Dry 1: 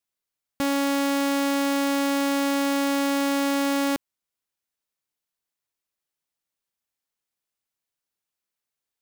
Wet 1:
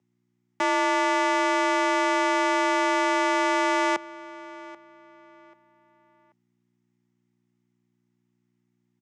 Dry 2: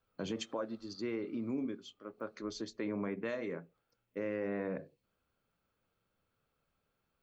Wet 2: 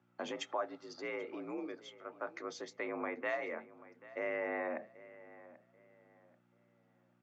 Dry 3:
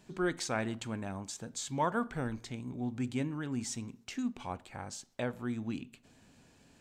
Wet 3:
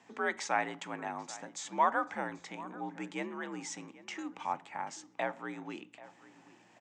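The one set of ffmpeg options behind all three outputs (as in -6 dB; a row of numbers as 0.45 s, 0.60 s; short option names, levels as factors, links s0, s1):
-filter_complex "[0:a]aeval=exprs='val(0)+0.000794*(sin(2*PI*60*n/s)+sin(2*PI*2*60*n/s)/2+sin(2*PI*3*60*n/s)/3+sin(2*PI*4*60*n/s)/4+sin(2*PI*5*60*n/s)/5)':c=same,afreqshift=58,highpass=270,equalizer=f=300:t=q:w=4:g=-5,equalizer=f=420:t=q:w=4:g=-5,equalizer=f=840:t=q:w=4:g=9,equalizer=f=1200:t=q:w=4:g=4,equalizer=f=2000:t=q:w=4:g=8,equalizer=f=4300:t=q:w=4:g=-7,lowpass=f=7200:w=0.5412,lowpass=f=7200:w=1.3066,asplit=2[s0][s1];[s1]adelay=786,lowpass=f=3200:p=1,volume=0.126,asplit=2[s2][s3];[s3]adelay=786,lowpass=f=3200:p=1,volume=0.32,asplit=2[s4][s5];[s5]adelay=786,lowpass=f=3200:p=1,volume=0.32[s6];[s2][s4][s6]amix=inputs=3:normalize=0[s7];[s0][s7]amix=inputs=2:normalize=0"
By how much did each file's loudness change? +1.0 LU, -1.0 LU, 0.0 LU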